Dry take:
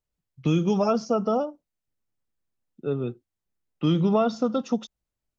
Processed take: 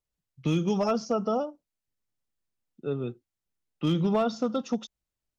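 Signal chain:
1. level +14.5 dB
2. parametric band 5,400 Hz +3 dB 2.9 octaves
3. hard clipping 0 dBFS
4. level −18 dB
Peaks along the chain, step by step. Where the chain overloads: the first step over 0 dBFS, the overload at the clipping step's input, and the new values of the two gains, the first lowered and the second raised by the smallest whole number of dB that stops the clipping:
+3.0, +3.5, 0.0, −18.0 dBFS
step 1, 3.5 dB
step 1 +10.5 dB, step 4 −14 dB

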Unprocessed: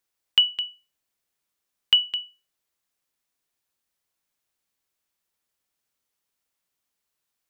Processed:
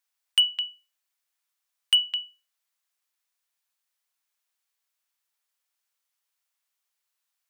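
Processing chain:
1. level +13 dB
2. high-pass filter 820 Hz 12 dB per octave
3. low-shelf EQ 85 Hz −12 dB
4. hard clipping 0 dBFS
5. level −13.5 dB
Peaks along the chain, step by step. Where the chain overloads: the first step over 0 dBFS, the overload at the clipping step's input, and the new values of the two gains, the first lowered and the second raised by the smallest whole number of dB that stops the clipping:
+5.0, +6.0, +6.0, 0.0, −13.5 dBFS
step 1, 6.0 dB
step 1 +7 dB, step 5 −7.5 dB

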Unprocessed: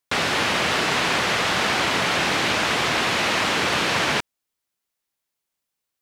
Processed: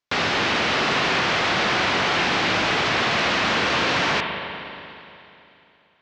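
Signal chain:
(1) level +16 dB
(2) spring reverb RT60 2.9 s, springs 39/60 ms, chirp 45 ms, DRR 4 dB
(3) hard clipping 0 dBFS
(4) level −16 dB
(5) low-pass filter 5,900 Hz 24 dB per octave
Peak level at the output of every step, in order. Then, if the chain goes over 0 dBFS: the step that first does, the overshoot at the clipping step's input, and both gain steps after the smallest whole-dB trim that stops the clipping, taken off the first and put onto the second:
+6.5, +8.0, 0.0, −16.0, −14.5 dBFS
step 1, 8.0 dB
step 1 +8 dB, step 4 −8 dB

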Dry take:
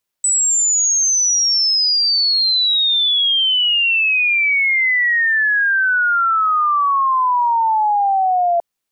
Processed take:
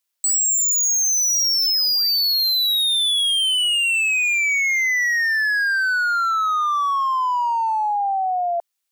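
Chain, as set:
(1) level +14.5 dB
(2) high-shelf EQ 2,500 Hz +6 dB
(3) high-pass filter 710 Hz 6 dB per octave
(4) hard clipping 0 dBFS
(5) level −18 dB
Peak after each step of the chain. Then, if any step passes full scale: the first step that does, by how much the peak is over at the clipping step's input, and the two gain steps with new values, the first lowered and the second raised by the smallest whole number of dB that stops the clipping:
+2.0, +7.5, +7.5, 0.0, −18.0 dBFS
step 1, 7.5 dB
step 1 +6.5 dB, step 5 −10 dB

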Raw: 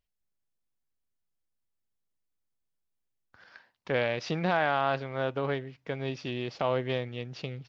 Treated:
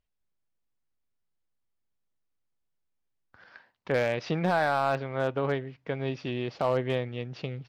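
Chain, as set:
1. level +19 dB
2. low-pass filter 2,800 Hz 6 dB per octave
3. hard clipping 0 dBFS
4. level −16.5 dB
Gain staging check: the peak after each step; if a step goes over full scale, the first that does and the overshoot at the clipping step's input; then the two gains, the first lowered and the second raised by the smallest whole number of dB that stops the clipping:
+6.0, +5.0, 0.0, −16.5 dBFS
step 1, 5.0 dB
step 1 +14 dB, step 4 −11.5 dB

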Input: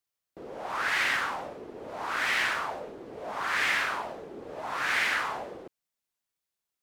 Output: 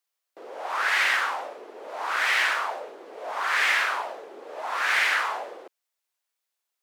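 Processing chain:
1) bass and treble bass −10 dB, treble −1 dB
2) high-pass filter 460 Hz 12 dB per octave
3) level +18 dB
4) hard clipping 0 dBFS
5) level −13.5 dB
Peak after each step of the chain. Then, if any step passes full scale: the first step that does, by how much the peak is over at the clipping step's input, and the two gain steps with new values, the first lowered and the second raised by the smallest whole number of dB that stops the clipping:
−15.5, −15.0, +3.0, 0.0, −13.5 dBFS
step 3, 3.0 dB
step 3 +15 dB, step 5 −10.5 dB

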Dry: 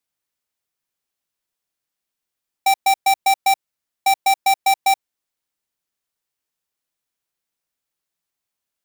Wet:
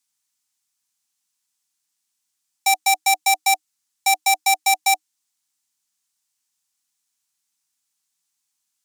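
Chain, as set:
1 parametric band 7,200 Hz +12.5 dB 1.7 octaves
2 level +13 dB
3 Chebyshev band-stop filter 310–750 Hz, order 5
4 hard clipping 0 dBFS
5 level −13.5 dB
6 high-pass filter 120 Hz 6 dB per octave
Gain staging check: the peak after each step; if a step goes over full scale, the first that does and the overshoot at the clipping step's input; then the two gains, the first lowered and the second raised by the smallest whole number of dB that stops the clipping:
−2.5, +10.5, +8.0, 0.0, −13.5, −13.0 dBFS
step 2, 8.0 dB
step 2 +5 dB, step 5 −5.5 dB

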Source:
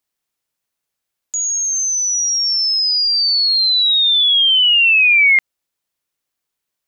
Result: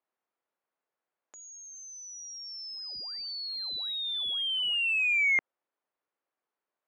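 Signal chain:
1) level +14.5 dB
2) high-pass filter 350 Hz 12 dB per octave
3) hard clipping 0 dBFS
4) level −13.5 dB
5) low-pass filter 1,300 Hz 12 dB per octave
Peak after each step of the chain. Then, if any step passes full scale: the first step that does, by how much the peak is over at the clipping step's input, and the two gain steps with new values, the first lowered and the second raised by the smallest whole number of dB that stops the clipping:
+7.0, +7.0, 0.0, −13.5, −20.5 dBFS
step 1, 7.0 dB
step 1 +7.5 dB, step 4 −6.5 dB

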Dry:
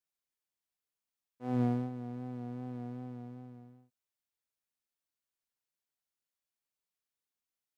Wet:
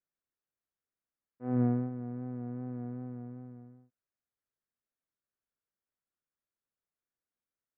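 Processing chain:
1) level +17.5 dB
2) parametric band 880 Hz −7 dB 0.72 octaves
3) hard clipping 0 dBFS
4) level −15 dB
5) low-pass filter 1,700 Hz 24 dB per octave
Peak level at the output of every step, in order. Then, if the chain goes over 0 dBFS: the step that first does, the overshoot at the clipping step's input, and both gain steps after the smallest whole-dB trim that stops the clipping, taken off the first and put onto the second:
−2.5, −2.5, −2.5, −17.5, −17.5 dBFS
no step passes full scale

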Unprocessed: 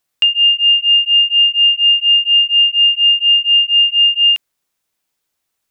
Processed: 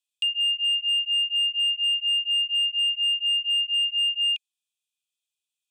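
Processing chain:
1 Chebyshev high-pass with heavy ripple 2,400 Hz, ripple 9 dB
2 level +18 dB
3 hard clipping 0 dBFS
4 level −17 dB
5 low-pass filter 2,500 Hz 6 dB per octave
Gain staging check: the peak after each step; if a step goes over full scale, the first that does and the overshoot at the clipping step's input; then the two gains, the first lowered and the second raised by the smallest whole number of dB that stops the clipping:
−12.0, +6.0, 0.0, −17.0, −18.5 dBFS
step 2, 6.0 dB
step 2 +12 dB, step 4 −11 dB

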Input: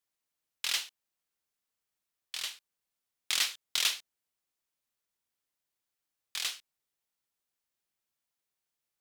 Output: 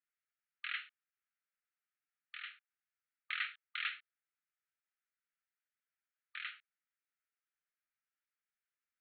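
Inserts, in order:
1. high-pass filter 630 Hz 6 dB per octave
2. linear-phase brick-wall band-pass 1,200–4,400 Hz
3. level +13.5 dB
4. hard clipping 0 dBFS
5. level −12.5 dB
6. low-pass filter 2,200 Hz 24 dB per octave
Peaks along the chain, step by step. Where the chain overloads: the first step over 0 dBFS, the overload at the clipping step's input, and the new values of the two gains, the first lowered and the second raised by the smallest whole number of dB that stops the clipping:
−13.5, −16.0, −2.5, −2.5, −15.0, −23.5 dBFS
no step passes full scale

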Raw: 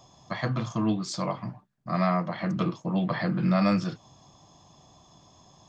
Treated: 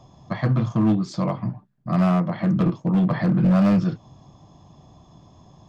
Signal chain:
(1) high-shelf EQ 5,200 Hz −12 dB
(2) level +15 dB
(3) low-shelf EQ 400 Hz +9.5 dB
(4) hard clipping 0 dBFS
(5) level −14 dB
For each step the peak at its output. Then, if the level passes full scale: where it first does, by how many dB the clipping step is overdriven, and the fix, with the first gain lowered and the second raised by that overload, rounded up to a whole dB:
−12.5, +2.5, +7.0, 0.0, −14.0 dBFS
step 2, 7.0 dB
step 2 +8 dB, step 5 −7 dB

